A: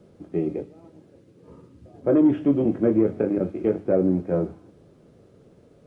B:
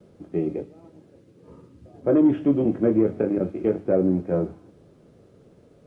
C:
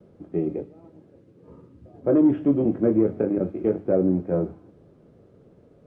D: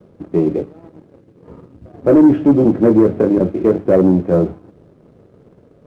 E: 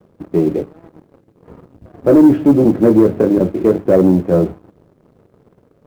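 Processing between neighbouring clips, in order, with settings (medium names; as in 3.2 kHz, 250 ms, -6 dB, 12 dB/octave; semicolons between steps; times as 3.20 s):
gate with hold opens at -49 dBFS
treble shelf 2.7 kHz -11.5 dB
waveshaping leveller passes 1; trim +7 dB
companding laws mixed up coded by A; trim +1 dB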